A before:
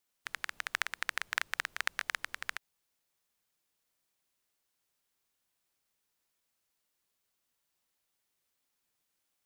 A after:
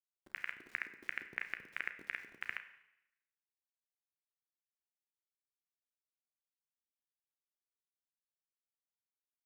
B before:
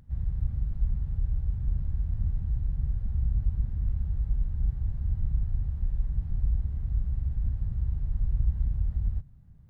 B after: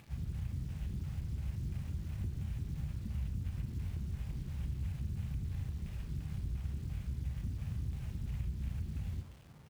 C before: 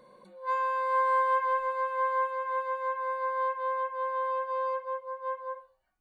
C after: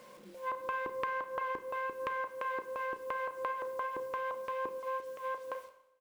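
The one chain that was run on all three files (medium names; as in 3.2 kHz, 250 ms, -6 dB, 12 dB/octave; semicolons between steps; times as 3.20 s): CVSD coder 64 kbps; high-pass 110 Hz 12 dB/octave; LFO low-pass square 2.9 Hz 340–2600 Hz; bit crusher 10-bit; early reflections 14 ms -15 dB, 33 ms -13 dB; compression, threshold -33 dBFS; Schroeder reverb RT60 0.86 s, combs from 31 ms, DRR 10.5 dB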